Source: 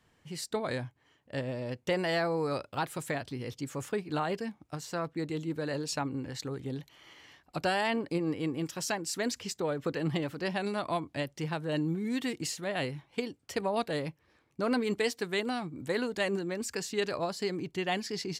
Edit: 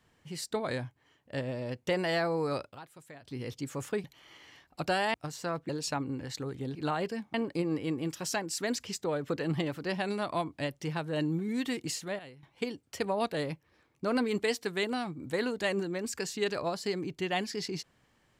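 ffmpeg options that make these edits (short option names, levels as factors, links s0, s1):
-filter_complex "[0:a]asplit=10[s0][s1][s2][s3][s4][s5][s6][s7][s8][s9];[s0]atrim=end=2.79,asetpts=PTS-STARTPTS,afade=t=out:st=2.64:d=0.15:silence=0.158489[s10];[s1]atrim=start=2.79:end=3.22,asetpts=PTS-STARTPTS,volume=0.158[s11];[s2]atrim=start=3.22:end=4.042,asetpts=PTS-STARTPTS,afade=t=in:d=0.15:silence=0.158489[s12];[s3]atrim=start=6.798:end=7.902[s13];[s4]atrim=start=4.628:end=5.182[s14];[s5]atrim=start=5.738:end=6.802[s15];[s6]atrim=start=4.038:end=4.632[s16];[s7]atrim=start=7.898:end=12.75,asetpts=PTS-STARTPTS,afade=t=out:st=4.402:d=0.45:c=log:silence=0.158489[s17];[s8]atrim=start=12.75:end=12.99,asetpts=PTS-STARTPTS,volume=0.158[s18];[s9]atrim=start=12.99,asetpts=PTS-STARTPTS,afade=t=in:d=0.45:c=log:silence=0.158489[s19];[s10][s11][s12]concat=n=3:v=0:a=1[s20];[s20][s13]acrossfade=d=0.004:c1=hsin:c2=hsin[s21];[s21][s14]acrossfade=d=0.004:c1=hsin:c2=hsin[s22];[s22][s15]acrossfade=d=0.004:c1=hsin:c2=hsin[s23];[s23][s16]acrossfade=d=0.004:c1=hsin:c2=hsin[s24];[s17][s18][s19]concat=n=3:v=0:a=1[s25];[s24][s25]acrossfade=d=0.004:c1=hsin:c2=hsin"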